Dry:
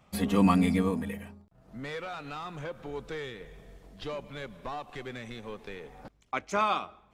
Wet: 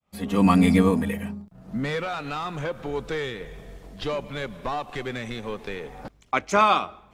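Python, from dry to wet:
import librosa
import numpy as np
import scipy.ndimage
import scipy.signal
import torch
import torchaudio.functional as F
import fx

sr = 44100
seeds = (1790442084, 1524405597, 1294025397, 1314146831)

y = fx.fade_in_head(x, sr, length_s=0.76)
y = fx.peak_eq(y, sr, hz=190.0, db=9.5, octaves=0.81, at=(1.22, 2.03))
y = y * 10.0 ** (8.5 / 20.0)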